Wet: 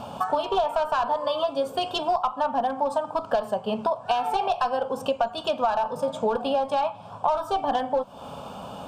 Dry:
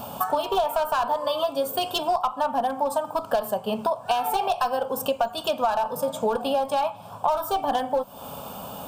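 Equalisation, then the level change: distance through air 85 m; 0.0 dB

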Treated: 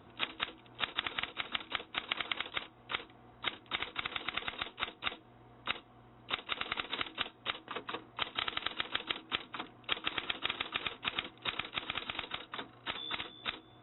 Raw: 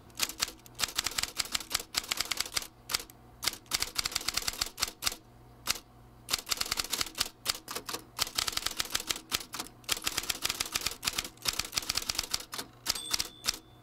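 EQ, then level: high-pass 160 Hz 6 dB/octave; brick-wall FIR low-pass 3.9 kHz; 0.0 dB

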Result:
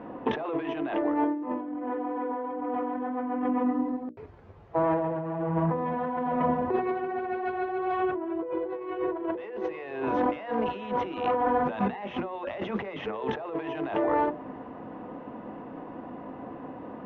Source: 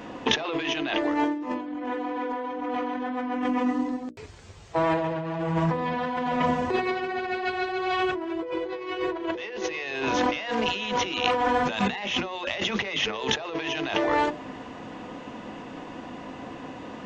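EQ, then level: low-pass 1.1 kHz 12 dB/octave; bass shelf 110 Hz -7 dB; 0.0 dB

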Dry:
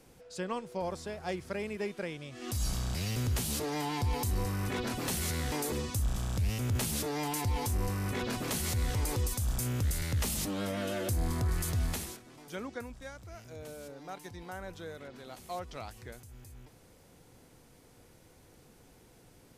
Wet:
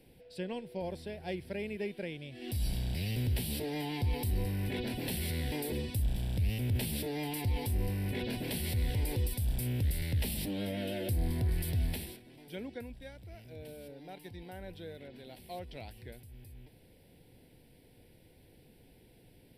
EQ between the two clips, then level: static phaser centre 2.9 kHz, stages 4; 0.0 dB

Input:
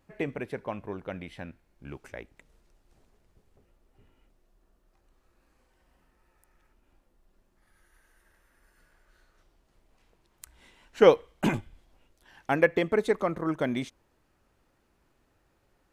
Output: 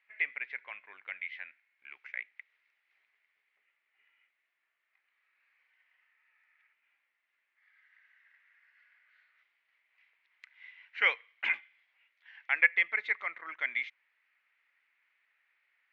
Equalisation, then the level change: resonant high-pass 2.1 kHz, resonance Q 5.6; Bessel low-pass 3.4 kHz, order 2; distance through air 220 m; 0.0 dB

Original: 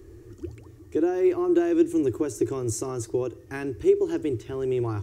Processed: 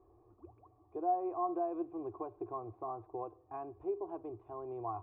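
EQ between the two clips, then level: cascade formant filter a; peaking EQ 2.1 kHz -4 dB 0.52 oct; +6.5 dB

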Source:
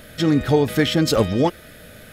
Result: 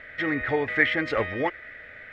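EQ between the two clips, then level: resonant low-pass 2 kHz, resonance Q 7.6; peaking EQ 180 Hz -10 dB 0.78 oct; bass shelf 320 Hz -5.5 dB; -6.0 dB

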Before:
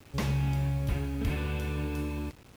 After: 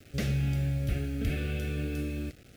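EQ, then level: Butterworth band-stop 970 Hz, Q 1.6; 0.0 dB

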